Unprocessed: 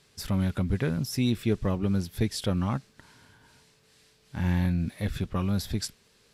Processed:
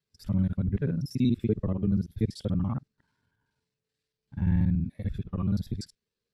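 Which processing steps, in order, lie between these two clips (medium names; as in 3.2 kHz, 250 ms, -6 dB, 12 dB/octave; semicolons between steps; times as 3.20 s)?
time reversed locally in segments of 48 ms; spectral contrast expander 1.5:1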